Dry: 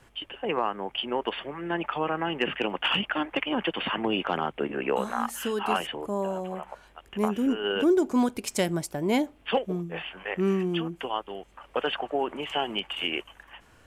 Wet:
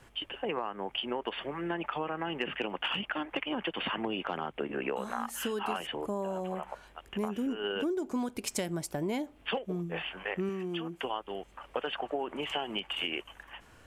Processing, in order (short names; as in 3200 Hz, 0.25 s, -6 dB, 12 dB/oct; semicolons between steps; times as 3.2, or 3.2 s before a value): compressor 6:1, threshold -30 dBFS, peak gain reduction 12 dB; 10.49–11.04 low shelf 150 Hz -10 dB